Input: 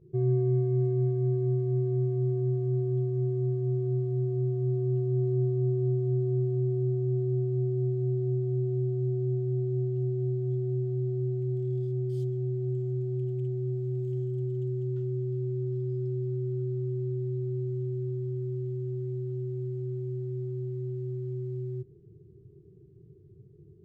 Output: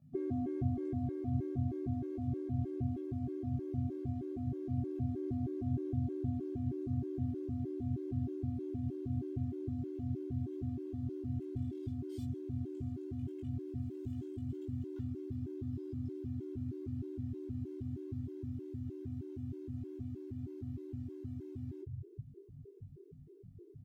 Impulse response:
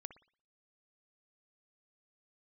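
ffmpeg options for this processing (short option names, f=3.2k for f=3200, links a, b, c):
-filter_complex "[0:a]acrossover=split=160[a][b];[a]adelay=360[c];[c][b]amix=inputs=2:normalize=0,asplit=3[d][e][f];[e]asetrate=29433,aresample=44100,atempo=1.49831,volume=-12dB[g];[f]asetrate=35002,aresample=44100,atempo=1.25992,volume=-16dB[h];[d][g][h]amix=inputs=3:normalize=0,asplit=2[i][j];[j]adelay=20,volume=-2.5dB[k];[i][k]amix=inputs=2:normalize=0,afftfilt=real='re*gt(sin(2*PI*3.2*pts/sr)*(1-2*mod(floor(b*sr/1024/280),2)),0)':imag='im*gt(sin(2*PI*3.2*pts/sr)*(1-2*mod(floor(b*sr/1024/280),2)),0)':win_size=1024:overlap=0.75,volume=1.5dB"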